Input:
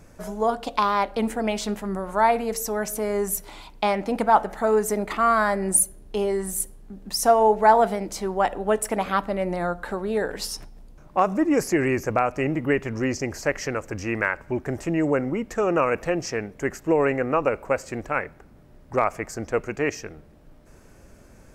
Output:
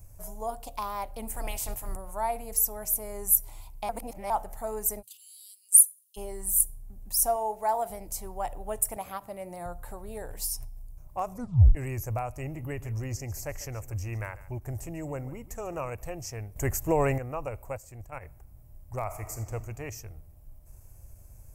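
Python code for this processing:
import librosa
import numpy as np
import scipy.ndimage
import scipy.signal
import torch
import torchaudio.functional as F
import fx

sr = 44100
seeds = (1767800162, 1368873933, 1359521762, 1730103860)

y = fx.spec_clip(x, sr, under_db=17, at=(1.33, 1.95), fade=0.02)
y = fx.cheby1_highpass(y, sr, hz=2900.0, order=6, at=(5.01, 6.16), fade=0.02)
y = fx.highpass(y, sr, hz=260.0, slope=6, at=(7.36, 7.9))
y = fx.highpass(y, sr, hz=130.0, slope=12, at=(8.96, 9.66))
y = fx.echo_single(y, sr, ms=144, db=-17.0, at=(12.4, 15.9))
y = fx.level_steps(y, sr, step_db=12, at=(17.76, 18.21), fade=0.02)
y = fx.reverb_throw(y, sr, start_s=19.03, length_s=0.49, rt60_s=1.6, drr_db=5.5)
y = fx.edit(y, sr, fx.reverse_span(start_s=3.89, length_s=0.41),
    fx.tape_stop(start_s=11.32, length_s=0.43),
    fx.clip_gain(start_s=16.56, length_s=0.62, db=10.0), tone=tone)
y = fx.curve_eq(y, sr, hz=(110.0, 190.0, 450.0, 690.0, 1000.0, 1500.0, 2400.0, 3700.0, 14000.0), db=(0, -20, -20, -13, -15, -23, -17, -19, 8))
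y = fx.end_taper(y, sr, db_per_s=420.0)
y = y * 10.0 ** (3.5 / 20.0)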